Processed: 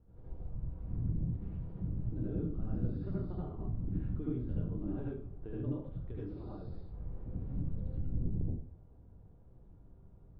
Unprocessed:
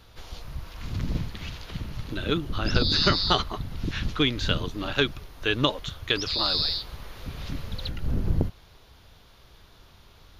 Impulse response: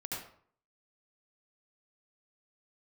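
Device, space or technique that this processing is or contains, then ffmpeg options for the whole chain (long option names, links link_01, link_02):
television next door: -filter_complex "[0:a]acompressor=threshold=-29dB:ratio=4,lowpass=380[link_01];[1:a]atrim=start_sample=2205[link_02];[link_01][link_02]afir=irnorm=-1:irlink=0,volume=-3.5dB"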